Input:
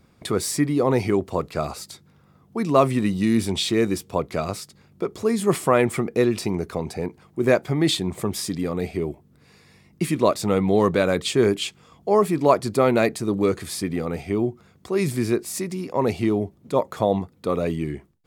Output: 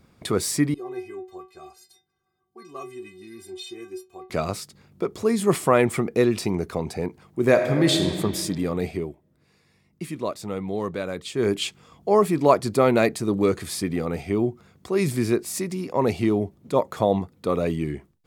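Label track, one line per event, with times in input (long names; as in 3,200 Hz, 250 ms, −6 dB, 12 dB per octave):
0.740000	4.300000	stiff-string resonator 370 Hz, decay 0.27 s, inharmonicity 0.008
7.490000	8.130000	thrown reverb, RT60 2.1 s, DRR 4 dB
8.900000	11.580000	duck −9.5 dB, fades 0.25 s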